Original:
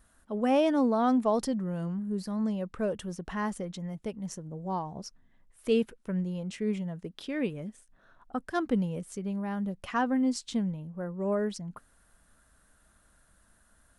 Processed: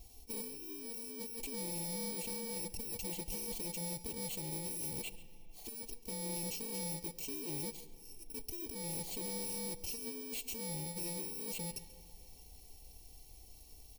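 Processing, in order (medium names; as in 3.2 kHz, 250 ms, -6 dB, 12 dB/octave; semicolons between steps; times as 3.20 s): bit-reversed sample order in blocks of 64 samples; comb 2.6 ms, depth 61%; compressor with a negative ratio -37 dBFS, ratio -1; saturation -37 dBFS, distortion -8 dB; Butterworth band-stop 1.4 kHz, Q 0.99; delay 138 ms -18 dB; on a send at -15.5 dB: reverberation RT60 3.2 s, pre-delay 10 ms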